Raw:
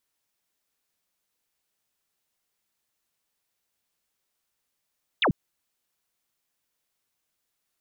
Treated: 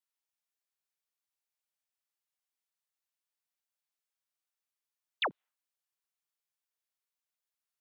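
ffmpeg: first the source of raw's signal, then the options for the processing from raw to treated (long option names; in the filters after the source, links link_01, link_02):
-f lavfi -i "aevalsrc='0.119*clip(t/0.002,0,1)*clip((0.09-t)/0.002,0,1)*sin(2*PI*4000*0.09/log(120/4000)*(exp(log(120/4000)*t/0.09)-1))':duration=0.09:sample_rate=44100"
-af "highpass=650,afftdn=noise_reduction=13:noise_floor=-55,alimiter=level_in=1dB:limit=-24dB:level=0:latency=1:release=205,volume=-1dB"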